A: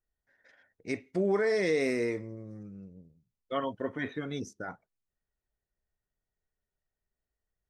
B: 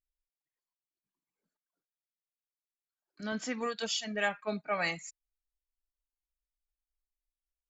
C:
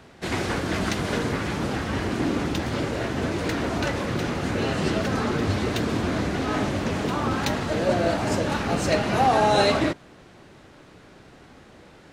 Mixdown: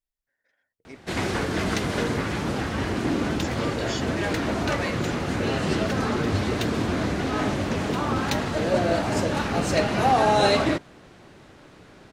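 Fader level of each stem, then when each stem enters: −10.5, −1.0, 0.0 decibels; 0.00, 0.00, 0.85 seconds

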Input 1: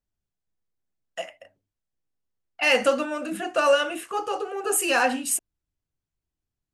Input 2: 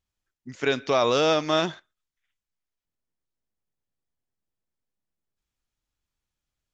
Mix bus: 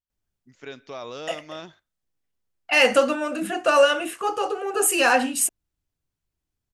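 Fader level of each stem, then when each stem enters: +3.0, −14.5 decibels; 0.10, 0.00 seconds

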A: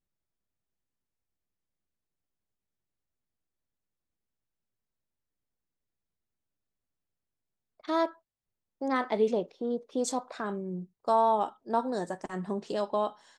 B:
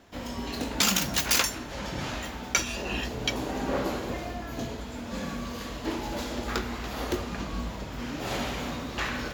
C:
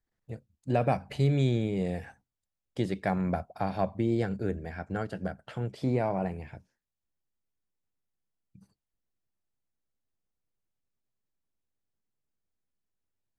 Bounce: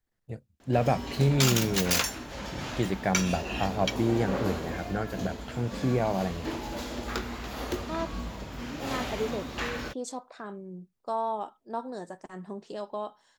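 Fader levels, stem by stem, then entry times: −6.0, −2.5, +1.5 decibels; 0.00, 0.60, 0.00 seconds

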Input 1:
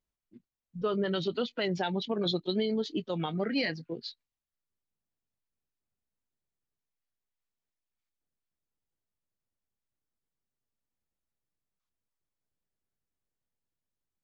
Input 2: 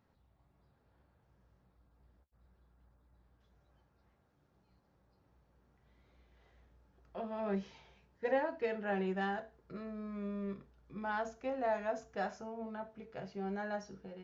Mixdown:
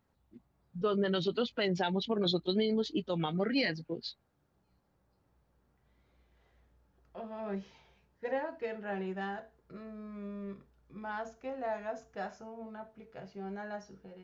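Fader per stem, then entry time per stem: −0.5, −2.0 decibels; 0.00, 0.00 seconds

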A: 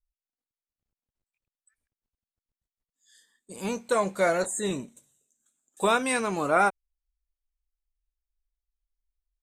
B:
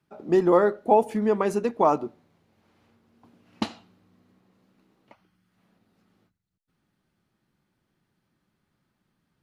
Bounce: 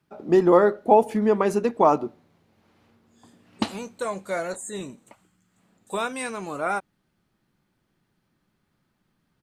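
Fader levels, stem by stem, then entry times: −4.5, +2.5 decibels; 0.10, 0.00 seconds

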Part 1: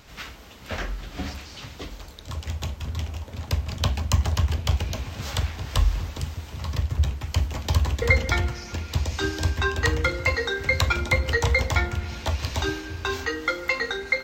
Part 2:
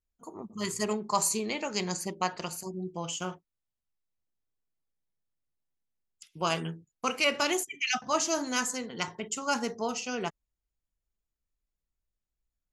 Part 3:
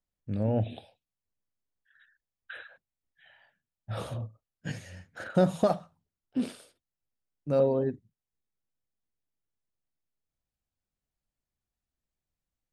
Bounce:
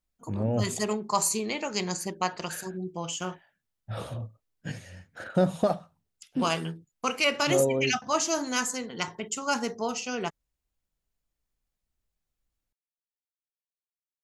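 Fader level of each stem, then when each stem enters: muted, +1.5 dB, 0.0 dB; muted, 0.00 s, 0.00 s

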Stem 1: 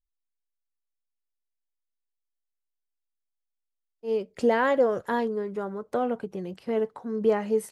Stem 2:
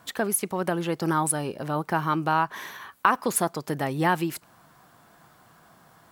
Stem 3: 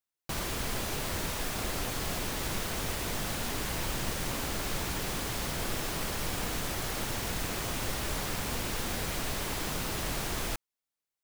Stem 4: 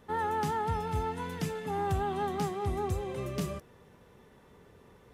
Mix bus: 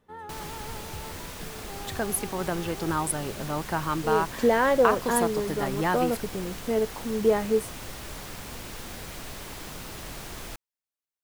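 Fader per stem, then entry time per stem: +1.0, −3.5, −5.5, −10.0 decibels; 0.00, 1.80, 0.00, 0.00 seconds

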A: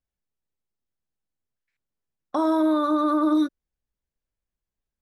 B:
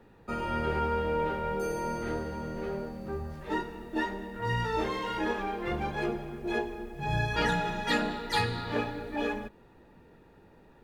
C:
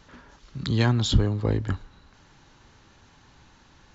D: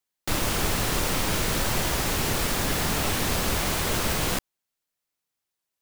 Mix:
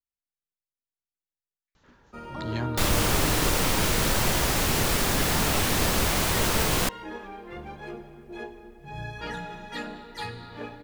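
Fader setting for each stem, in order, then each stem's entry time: −16.5, −7.5, −10.0, +1.5 decibels; 0.00, 1.85, 1.75, 2.50 seconds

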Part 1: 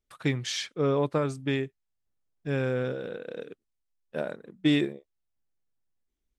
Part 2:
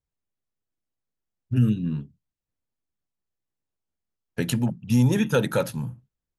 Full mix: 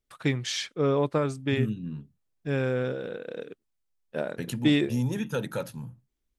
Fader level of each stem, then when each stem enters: +1.0, −8.5 decibels; 0.00, 0.00 seconds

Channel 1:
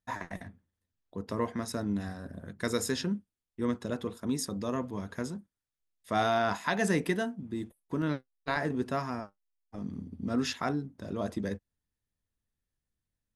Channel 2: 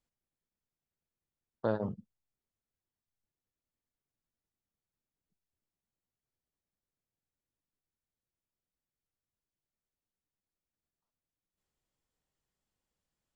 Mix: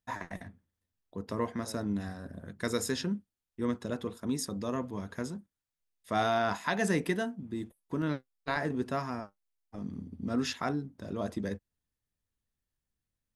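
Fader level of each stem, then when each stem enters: −1.0, −18.5 decibels; 0.00, 0.00 seconds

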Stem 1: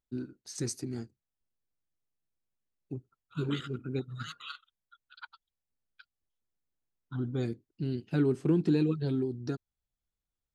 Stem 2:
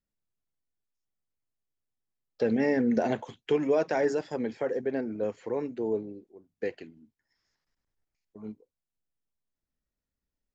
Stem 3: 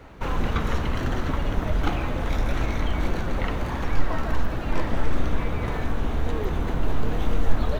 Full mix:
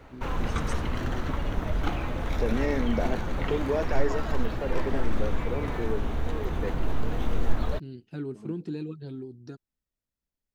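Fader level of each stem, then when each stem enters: −8.0, −3.0, −4.0 decibels; 0.00, 0.00, 0.00 seconds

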